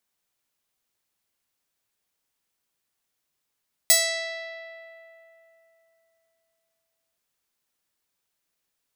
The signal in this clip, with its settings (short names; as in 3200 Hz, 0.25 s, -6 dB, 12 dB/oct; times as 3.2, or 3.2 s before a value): plucked string E5, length 3.27 s, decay 3.31 s, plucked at 0.46, bright